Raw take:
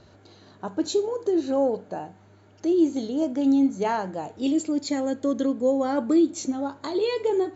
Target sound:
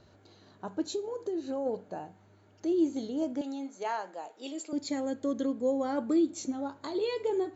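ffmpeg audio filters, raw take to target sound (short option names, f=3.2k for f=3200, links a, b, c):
-filter_complex "[0:a]asplit=3[a][b][c];[a]afade=t=out:st=0.82:d=0.02[d];[b]acompressor=threshold=-25dB:ratio=3,afade=t=in:st=0.82:d=0.02,afade=t=out:st=1.65:d=0.02[e];[c]afade=t=in:st=1.65:d=0.02[f];[d][e][f]amix=inputs=3:normalize=0,asettb=1/sr,asplit=3[g][h][i];[g]atrim=end=3.414[j];[h]atrim=start=3.41:end=4.73,asetpts=PTS-STARTPTS,afade=t=in:d=0.004:c=qsin,afade=t=out:st=1.316:d=0.004:c=qsin,highpass=540[k];[i]atrim=start=4.726[l];[j][k]acrossfade=d=0.004:c1=hsin:c2=qsin[m];[m][l]acrossfade=d=0.004:c1=qsin:c2=hsin,volume=-6.5dB"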